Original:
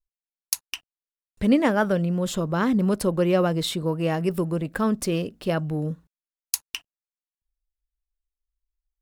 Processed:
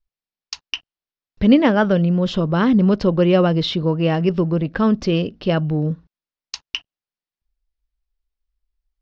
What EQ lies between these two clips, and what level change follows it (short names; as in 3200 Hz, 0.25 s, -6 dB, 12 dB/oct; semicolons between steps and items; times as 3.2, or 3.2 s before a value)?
steep low-pass 5600 Hz 48 dB/oct; low shelf 380 Hz +4.5 dB; dynamic EQ 3000 Hz, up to +6 dB, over -52 dBFS, Q 4.9; +3.5 dB